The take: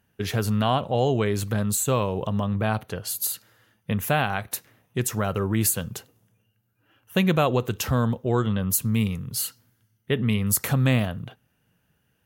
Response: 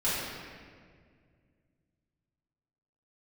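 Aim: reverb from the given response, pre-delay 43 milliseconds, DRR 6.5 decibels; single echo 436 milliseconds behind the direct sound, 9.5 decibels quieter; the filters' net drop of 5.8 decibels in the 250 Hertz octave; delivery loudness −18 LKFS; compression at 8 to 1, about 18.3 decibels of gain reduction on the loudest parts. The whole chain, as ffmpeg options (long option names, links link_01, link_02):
-filter_complex "[0:a]equalizer=frequency=250:width_type=o:gain=-8,acompressor=threshold=-38dB:ratio=8,aecho=1:1:436:0.335,asplit=2[link_01][link_02];[1:a]atrim=start_sample=2205,adelay=43[link_03];[link_02][link_03]afir=irnorm=-1:irlink=0,volume=-17dB[link_04];[link_01][link_04]amix=inputs=2:normalize=0,volume=22.5dB"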